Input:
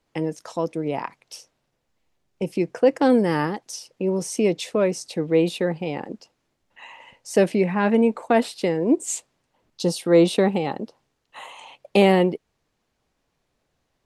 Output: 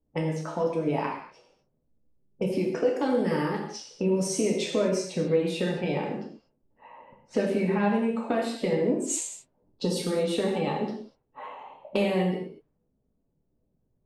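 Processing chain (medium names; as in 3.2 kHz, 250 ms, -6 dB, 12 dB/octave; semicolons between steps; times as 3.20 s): coarse spectral quantiser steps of 15 dB; compression 6:1, threshold -26 dBFS, peak gain reduction 14.5 dB; level-controlled noise filter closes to 330 Hz, open at -27.5 dBFS; gated-style reverb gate 270 ms falling, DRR -2 dB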